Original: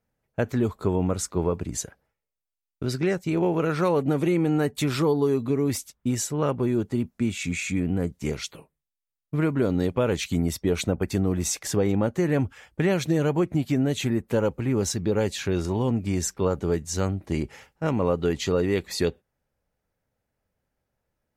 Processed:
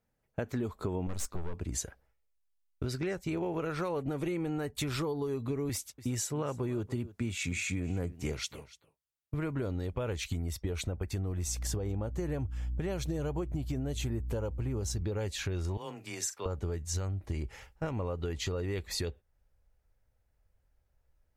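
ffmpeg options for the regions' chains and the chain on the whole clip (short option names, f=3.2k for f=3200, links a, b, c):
-filter_complex "[0:a]asettb=1/sr,asplit=3[a][b][c];[a]atrim=end=1.074[d];[b]atrim=start=1.07:end=1.54,asetpts=PTS-STARTPTS,afade=t=in:d=0.004:c=qsin,afade=t=out:st=0.466:d=0.004:c=qsin,bass=f=250:g=4,treble=f=4k:g=5,aeval=exprs='(tanh(17.8*val(0)+0.65)-tanh(0.65))/17.8':c=same[e];[c]atrim=start=1.536[f];[d][e]acrossfade=d=0.004:c1=hsin:c2=qsin[g];[g][f]acrossfade=d=0.004:c1=qsin:c2=hsin,asettb=1/sr,asplit=3[h][i][j];[h]atrim=end=5.694[k];[i]atrim=start=5.69:end=9.34,asetpts=PTS-STARTPTS,afade=t=in:d=0.004:c=qsin,afade=t=out:st=3.646:d=0.004:c=qsin,highpass=100,aecho=1:1:290:0.1,atrim=end_sample=160965[l];[j]atrim=start=9.336[m];[k][l]acrossfade=d=0.004:c1=hsin:c2=qsin[n];[n][m]acrossfade=d=0.004:c1=qsin:c2=hsin,asettb=1/sr,asplit=3[o][p][q];[o]atrim=end=11.454[r];[p]atrim=start=11.45:end=15.03,asetpts=PTS-STARTPTS,afade=t=in:d=0.004:c=qsin,afade=t=out:st=3.576:d=0.004:c=qsin,equalizer=f=2k:t=o:w=1.1:g=-6.5,bandreject=f=3.8k:w=29,aeval=exprs='val(0)+0.01*(sin(2*PI*60*n/s)+sin(2*PI*2*60*n/s)/2+sin(2*PI*3*60*n/s)/3+sin(2*PI*4*60*n/s)/4+sin(2*PI*5*60*n/s)/5)':c=same[s];[q]atrim=start=15.026[t];[r][s]acrossfade=d=0.004:c1=hsin:c2=qsin[u];[u][t]acrossfade=d=0.004:c1=qsin:c2=hsin,asettb=1/sr,asplit=3[v][w][x];[v]atrim=end=15.774[y];[w]atrim=start=15.77:end=16.46,asetpts=PTS-STARTPTS,afade=t=in:d=0.004:c=qsin,afade=t=out:st=0.686:d=0.004:c=qsin,highpass=f=1.2k:p=1,afreqshift=16,asplit=2[z][aa];[aa]adelay=42,volume=-13dB[ab];[z][ab]amix=inputs=2:normalize=0,atrim=end_sample=30429[ac];[x]atrim=start=16.456[ad];[y][ac]acrossfade=d=0.004:c1=hsin:c2=qsin[ae];[ae][ad]acrossfade=d=0.004:c1=qsin:c2=hsin,asubboost=boost=8.5:cutoff=64,alimiter=limit=-17.5dB:level=0:latency=1:release=368,acompressor=threshold=-28dB:ratio=6,volume=-2dB"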